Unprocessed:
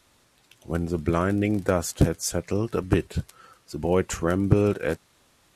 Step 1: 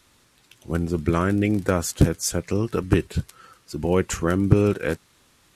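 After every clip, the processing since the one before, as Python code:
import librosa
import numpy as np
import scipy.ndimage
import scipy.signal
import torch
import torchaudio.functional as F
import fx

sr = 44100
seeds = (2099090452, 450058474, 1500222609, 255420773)

y = fx.peak_eq(x, sr, hz=660.0, db=-5.0, octaves=0.85)
y = F.gain(torch.from_numpy(y), 3.0).numpy()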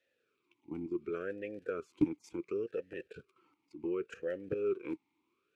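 y = fx.level_steps(x, sr, step_db=13)
y = fx.vowel_sweep(y, sr, vowels='e-u', hz=0.69)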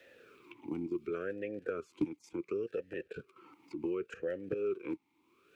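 y = fx.band_squash(x, sr, depth_pct=70)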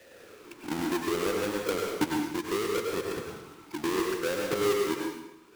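y = fx.halfwave_hold(x, sr)
y = fx.rev_plate(y, sr, seeds[0], rt60_s=0.93, hf_ratio=0.9, predelay_ms=85, drr_db=-0.5)
y = F.gain(torch.from_numpy(y), 1.5).numpy()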